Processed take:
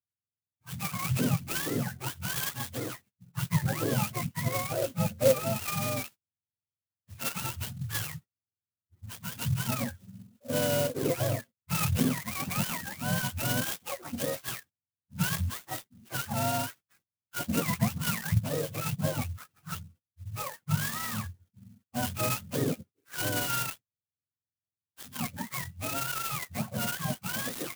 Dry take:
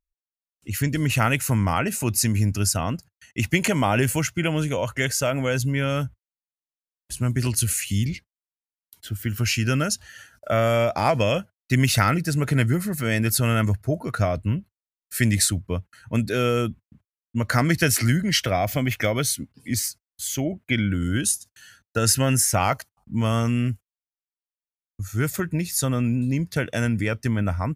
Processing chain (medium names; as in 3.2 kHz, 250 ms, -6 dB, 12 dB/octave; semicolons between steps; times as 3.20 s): spectrum inverted on a logarithmic axis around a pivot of 580 Hz; 4.50–5.38 s: small resonant body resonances 520/1500 Hz, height 10 dB -> 14 dB, ringing for 30 ms; sampling jitter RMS 0.08 ms; trim -7 dB